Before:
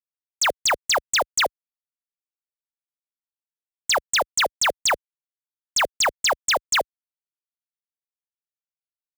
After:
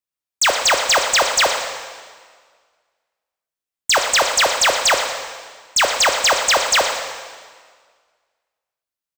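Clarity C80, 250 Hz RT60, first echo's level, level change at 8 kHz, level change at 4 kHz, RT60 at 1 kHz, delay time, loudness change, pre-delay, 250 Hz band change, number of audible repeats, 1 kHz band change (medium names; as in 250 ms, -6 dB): 6.0 dB, 1.7 s, -12.0 dB, +6.0 dB, +6.5 dB, 1.7 s, 117 ms, +6.0 dB, 5 ms, +6.5 dB, 1, +6.0 dB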